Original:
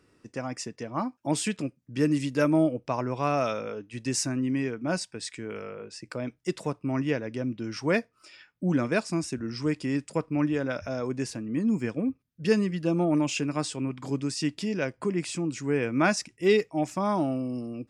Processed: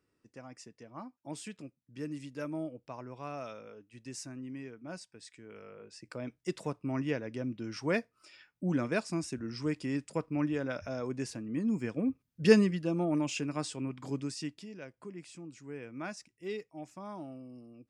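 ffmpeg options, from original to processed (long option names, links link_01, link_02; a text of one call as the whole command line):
ffmpeg -i in.wav -af "volume=2dB,afade=type=in:start_time=5.43:duration=0.99:silence=0.334965,afade=type=in:start_time=11.89:duration=0.64:silence=0.421697,afade=type=out:start_time=12.53:duration=0.31:silence=0.398107,afade=type=out:start_time=14.2:duration=0.47:silence=0.281838" out.wav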